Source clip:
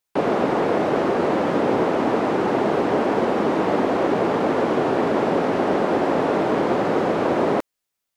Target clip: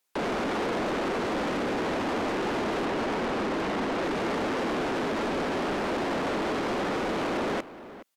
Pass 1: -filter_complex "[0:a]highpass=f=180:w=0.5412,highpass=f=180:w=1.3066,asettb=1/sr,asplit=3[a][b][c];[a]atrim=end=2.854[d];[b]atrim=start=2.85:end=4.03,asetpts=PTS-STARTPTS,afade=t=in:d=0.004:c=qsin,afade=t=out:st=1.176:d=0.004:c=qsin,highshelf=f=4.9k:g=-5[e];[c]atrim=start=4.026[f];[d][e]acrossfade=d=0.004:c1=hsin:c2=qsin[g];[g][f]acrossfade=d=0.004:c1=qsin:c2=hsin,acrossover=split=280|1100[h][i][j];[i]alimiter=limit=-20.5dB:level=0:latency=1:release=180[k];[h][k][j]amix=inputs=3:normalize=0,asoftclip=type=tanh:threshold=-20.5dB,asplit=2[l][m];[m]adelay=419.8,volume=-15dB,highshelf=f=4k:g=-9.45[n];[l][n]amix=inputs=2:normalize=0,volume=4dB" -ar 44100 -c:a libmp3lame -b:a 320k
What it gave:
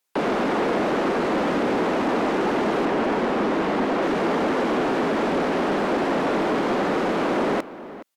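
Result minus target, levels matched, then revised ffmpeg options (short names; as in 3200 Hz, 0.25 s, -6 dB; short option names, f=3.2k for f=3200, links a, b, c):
soft clip: distortion -8 dB
-filter_complex "[0:a]highpass=f=180:w=0.5412,highpass=f=180:w=1.3066,asettb=1/sr,asplit=3[a][b][c];[a]atrim=end=2.854[d];[b]atrim=start=2.85:end=4.03,asetpts=PTS-STARTPTS,afade=t=in:d=0.004:c=qsin,afade=t=out:st=1.176:d=0.004:c=qsin,highshelf=f=4.9k:g=-5[e];[c]atrim=start=4.026[f];[d][e]acrossfade=d=0.004:c1=hsin:c2=qsin[g];[g][f]acrossfade=d=0.004:c1=qsin:c2=hsin,acrossover=split=280|1100[h][i][j];[i]alimiter=limit=-20.5dB:level=0:latency=1:release=180[k];[h][k][j]amix=inputs=3:normalize=0,asoftclip=type=tanh:threshold=-31dB,asplit=2[l][m];[m]adelay=419.8,volume=-15dB,highshelf=f=4k:g=-9.45[n];[l][n]amix=inputs=2:normalize=0,volume=4dB" -ar 44100 -c:a libmp3lame -b:a 320k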